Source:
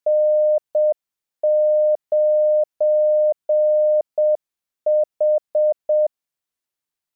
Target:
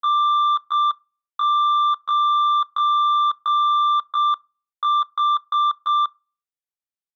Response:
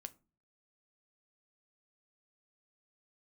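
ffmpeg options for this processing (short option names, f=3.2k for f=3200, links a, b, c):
-filter_complex "[0:a]aeval=exprs='0.237*(cos(1*acos(clip(val(0)/0.237,-1,1)))-cos(1*PI/2))+0.0473*(cos(3*acos(clip(val(0)/0.237,-1,1)))-cos(3*PI/2))+0.0015*(cos(5*acos(clip(val(0)/0.237,-1,1)))-cos(5*PI/2))':c=same,asetrate=85689,aresample=44100,atempo=0.514651,asplit=2[a][b];[1:a]atrim=start_sample=2205[c];[b][c]afir=irnorm=-1:irlink=0,volume=-3.5dB[d];[a][d]amix=inputs=2:normalize=0,volume=-4.5dB"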